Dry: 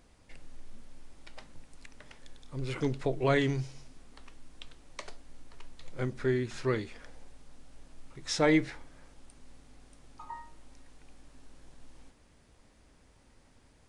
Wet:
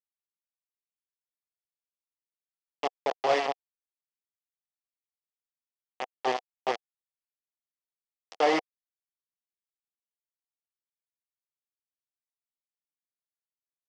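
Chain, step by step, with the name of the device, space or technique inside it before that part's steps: hand-held game console (bit crusher 4-bit; cabinet simulation 440–4800 Hz, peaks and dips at 490 Hz +4 dB, 740 Hz +10 dB, 1.5 kHz -9 dB, 2.3 kHz -4 dB, 3.9 kHz -8 dB)

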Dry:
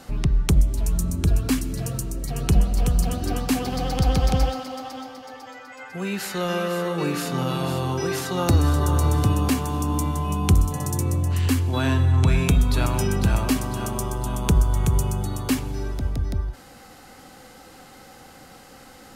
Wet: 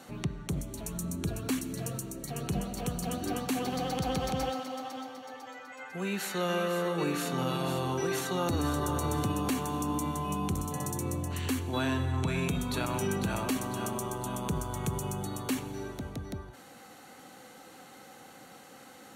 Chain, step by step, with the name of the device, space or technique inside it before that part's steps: PA system with an anti-feedback notch (high-pass 150 Hz 12 dB/octave; Butterworth band-stop 5 kHz, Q 8; peak limiter -16.5 dBFS, peak gain reduction 9.5 dB); trim -4.5 dB

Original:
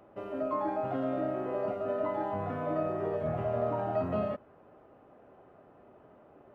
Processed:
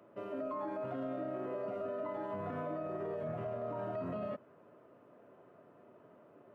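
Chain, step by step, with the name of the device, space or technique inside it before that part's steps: PA system with an anti-feedback notch (high-pass 110 Hz 24 dB/octave; Butterworth band-stop 790 Hz, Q 7.4; peak limiter -29 dBFS, peak gain reduction 8.5 dB); trim -2.5 dB

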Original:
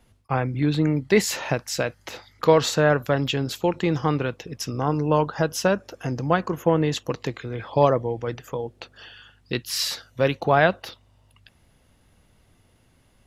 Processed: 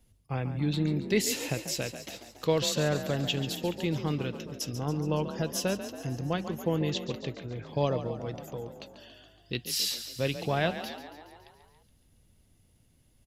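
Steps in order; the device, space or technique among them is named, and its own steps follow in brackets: 6.81–7.65 s: low-pass 6.9 kHz -> 3.3 kHz 24 dB/octave; smiley-face EQ (bass shelf 110 Hz +5 dB; peaking EQ 1.2 kHz -8 dB 1.9 oct; treble shelf 7 kHz +8 dB); frequency-shifting echo 140 ms, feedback 64%, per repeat +36 Hz, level -11 dB; dynamic bell 3 kHz, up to +6 dB, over -44 dBFS, Q 1.4; trim -7.5 dB

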